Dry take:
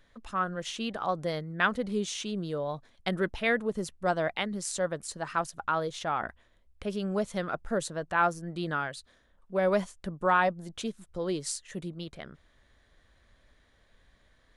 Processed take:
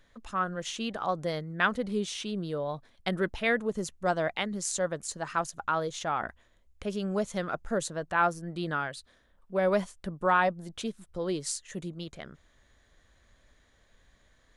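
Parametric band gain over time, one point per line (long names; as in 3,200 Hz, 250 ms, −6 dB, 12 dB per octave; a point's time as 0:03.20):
parametric band 6,700 Hz 0.29 octaves
0:01.68 +4 dB
0:02.16 −5.5 dB
0:02.67 −5.5 dB
0:03.63 +6.5 dB
0:07.67 +6.5 dB
0:08.28 −1 dB
0:11.33 −1 dB
0:11.86 +9 dB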